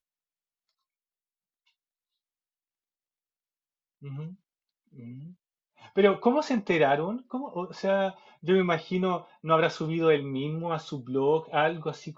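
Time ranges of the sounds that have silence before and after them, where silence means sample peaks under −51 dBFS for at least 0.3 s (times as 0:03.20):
0:04.02–0:04.35
0:04.93–0:05.33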